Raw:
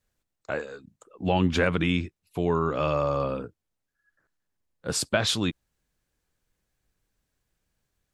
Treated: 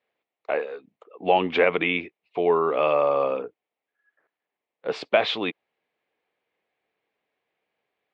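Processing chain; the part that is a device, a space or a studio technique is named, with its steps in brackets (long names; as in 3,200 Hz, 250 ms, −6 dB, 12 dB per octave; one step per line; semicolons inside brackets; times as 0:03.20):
phone earpiece (loudspeaker in its box 410–3,200 Hz, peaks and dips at 440 Hz +5 dB, 730 Hz +5 dB, 1,500 Hz −7 dB, 2,200 Hz +5 dB)
level +4.5 dB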